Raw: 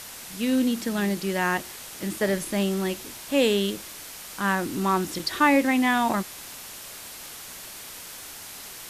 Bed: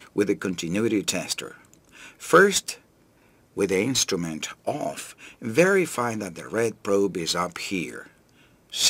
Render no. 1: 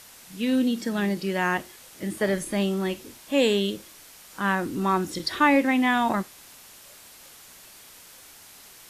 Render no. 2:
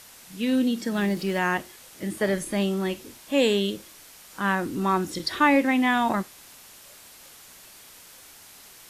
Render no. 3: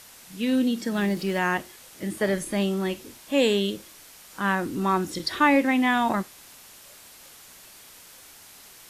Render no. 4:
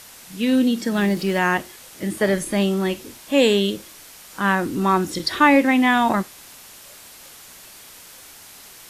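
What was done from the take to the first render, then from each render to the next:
noise reduction from a noise print 8 dB
0:00.92–0:01.39: mu-law and A-law mismatch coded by mu
no processing that can be heard
level +5 dB

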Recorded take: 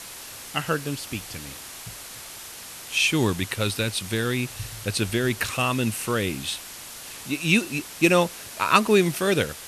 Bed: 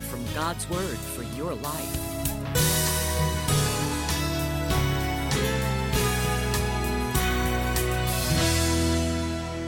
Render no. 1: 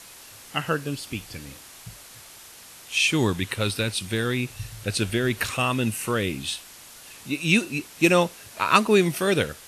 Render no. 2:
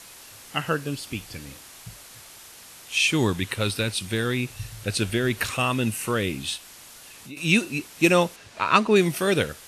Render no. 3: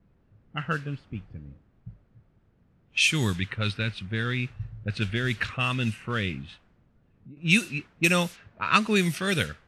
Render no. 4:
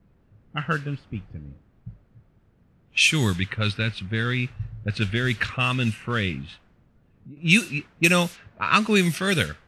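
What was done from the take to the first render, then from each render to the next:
noise reduction from a noise print 6 dB
0:06.57–0:07.37: downward compressor 2.5 to 1, threshold −41 dBFS; 0:08.36–0:08.96: high-frequency loss of the air 73 metres
low-pass that shuts in the quiet parts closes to 300 Hz, open at −17 dBFS; flat-topped bell 530 Hz −8.5 dB 2.3 octaves
level +3.5 dB; brickwall limiter −3 dBFS, peak gain reduction 2.5 dB

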